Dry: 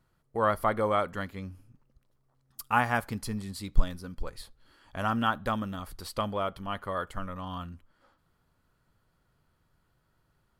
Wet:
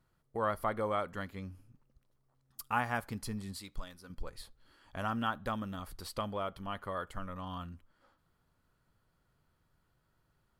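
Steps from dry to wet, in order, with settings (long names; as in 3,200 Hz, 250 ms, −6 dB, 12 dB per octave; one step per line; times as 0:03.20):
in parallel at −2 dB: downward compressor, threshold −34 dBFS, peak gain reduction 20.5 dB
0:03.58–0:04.10: on the sum: low-shelf EQ 400 Hz −11.5 dB
level −8.5 dB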